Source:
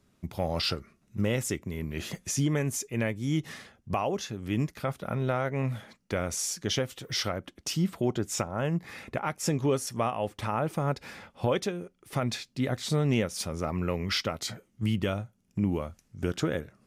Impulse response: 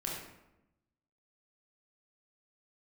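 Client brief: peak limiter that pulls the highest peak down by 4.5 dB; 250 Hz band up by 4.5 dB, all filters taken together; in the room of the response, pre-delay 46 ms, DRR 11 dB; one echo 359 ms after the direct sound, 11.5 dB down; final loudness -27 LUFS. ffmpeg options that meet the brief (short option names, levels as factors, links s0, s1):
-filter_complex "[0:a]equalizer=f=250:t=o:g=6,alimiter=limit=0.141:level=0:latency=1,aecho=1:1:359:0.266,asplit=2[s0][s1];[1:a]atrim=start_sample=2205,adelay=46[s2];[s1][s2]afir=irnorm=-1:irlink=0,volume=0.211[s3];[s0][s3]amix=inputs=2:normalize=0,volume=1.33"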